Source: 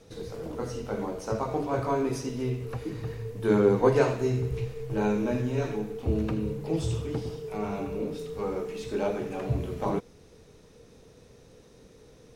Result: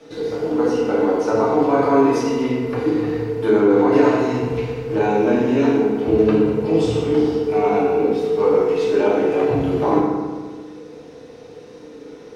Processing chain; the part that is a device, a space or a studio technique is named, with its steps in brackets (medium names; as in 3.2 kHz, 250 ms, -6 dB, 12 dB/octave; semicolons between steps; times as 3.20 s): DJ mixer with the lows and highs turned down (three-band isolator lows -17 dB, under 190 Hz, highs -12 dB, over 5.1 kHz; peak limiter -21.5 dBFS, peak gain reduction 10.5 dB); FDN reverb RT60 1.5 s, low-frequency decay 1.3×, high-frequency decay 0.5×, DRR -4.5 dB; trim +8 dB